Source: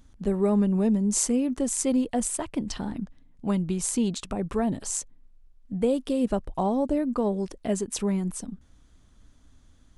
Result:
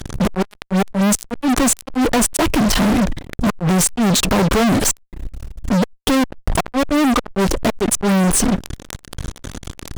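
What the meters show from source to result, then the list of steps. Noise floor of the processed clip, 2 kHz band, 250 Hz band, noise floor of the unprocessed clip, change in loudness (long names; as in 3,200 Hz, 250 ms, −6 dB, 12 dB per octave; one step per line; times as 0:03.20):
−51 dBFS, +21.5 dB, +8.5 dB, −58 dBFS, +9.5 dB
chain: gate with flip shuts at −16 dBFS, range −35 dB
fuzz pedal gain 50 dB, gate −50 dBFS
background raised ahead of every attack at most 130 dB per second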